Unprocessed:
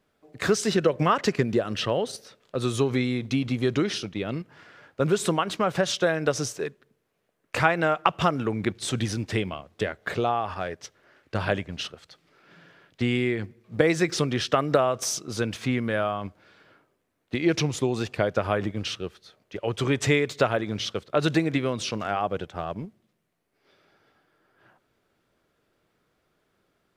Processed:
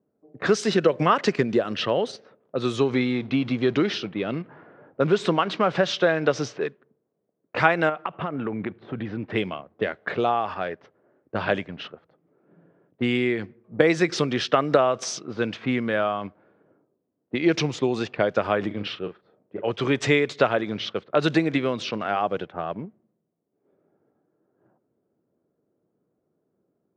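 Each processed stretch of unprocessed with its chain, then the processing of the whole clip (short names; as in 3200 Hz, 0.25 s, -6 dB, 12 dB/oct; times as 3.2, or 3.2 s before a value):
2.93–6.67 G.711 law mismatch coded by mu + LPF 4800 Hz
7.89–9.3 compressor 10:1, threshold -24 dBFS + air absorption 230 m
18.67–19.71 notch 6300 Hz, Q 6.4 + doubler 39 ms -8.5 dB
whole clip: HPF 160 Hz 12 dB/oct; low-pass opened by the level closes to 450 Hz, open at -22.5 dBFS; LPF 5300 Hz 12 dB/oct; gain +2.5 dB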